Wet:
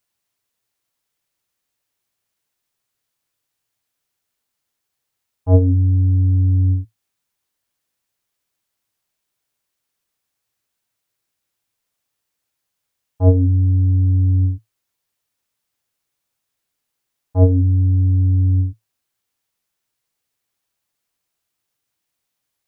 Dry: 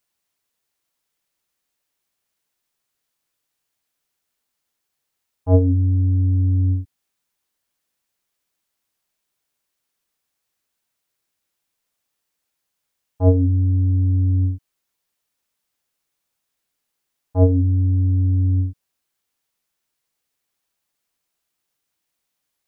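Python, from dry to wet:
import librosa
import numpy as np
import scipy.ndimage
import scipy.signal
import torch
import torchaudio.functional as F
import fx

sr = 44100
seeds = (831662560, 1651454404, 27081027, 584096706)

y = fx.peak_eq(x, sr, hz=110.0, db=8.0, octaves=0.35)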